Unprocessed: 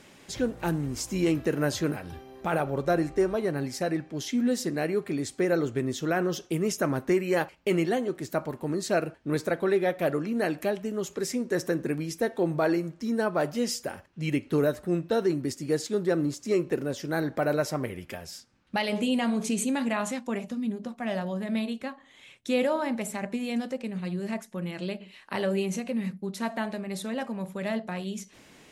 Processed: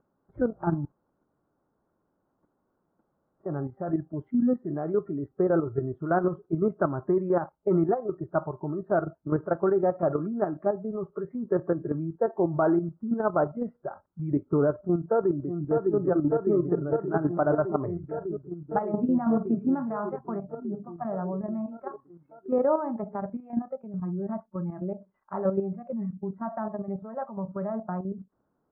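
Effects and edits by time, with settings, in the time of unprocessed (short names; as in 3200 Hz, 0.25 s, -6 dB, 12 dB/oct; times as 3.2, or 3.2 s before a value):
0.85–3.46 room tone
14.79–15.96 echo throw 0.6 s, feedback 85%, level -3.5 dB
whole clip: Chebyshev low-pass 1400 Hz, order 5; spectral noise reduction 17 dB; level quantiser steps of 9 dB; gain +5.5 dB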